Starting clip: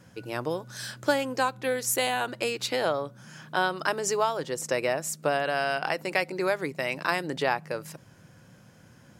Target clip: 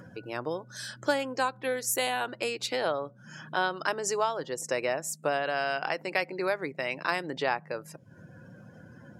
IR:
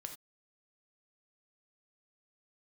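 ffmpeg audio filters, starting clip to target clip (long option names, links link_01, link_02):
-af "acompressor=mode=upward:threshold=-33dB:ratio=2.5,lowshelf=frequency=140:gain=-7.5,afftdn=noise_reduction=20:noise_floor=-47,volume=-2dB"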